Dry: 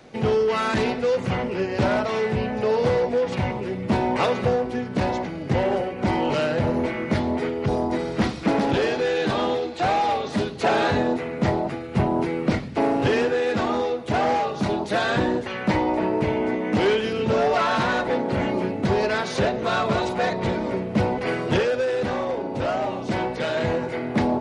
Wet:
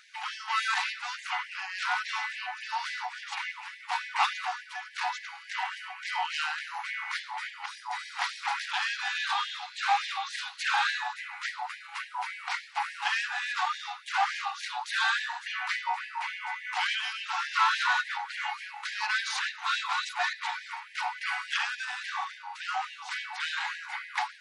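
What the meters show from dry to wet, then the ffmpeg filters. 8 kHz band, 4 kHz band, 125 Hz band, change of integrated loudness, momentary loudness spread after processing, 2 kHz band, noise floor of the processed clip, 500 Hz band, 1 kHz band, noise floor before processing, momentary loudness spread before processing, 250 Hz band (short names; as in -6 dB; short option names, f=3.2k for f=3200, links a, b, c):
0.0 dB, 0.0 dB, under -40 dB, -8.0 dB, 9 LU, -0.5 dB, -48 dBFS, -32.5 dB, -5.5 dB, -32 dBFS, 5 LU, under -40 dB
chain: -af "afftfilt=real='re*gte(b*sr/1024,710*pow(1600/710,0.5+0.5*sin(2*PI*3.5*pts/sr)))':imag='im*gte(b*sr/1024,710*pow(1600/710,0.5+0.5*sin(2*PI*3.5*pts/sr)))':win_size=1024:overlap=0.75"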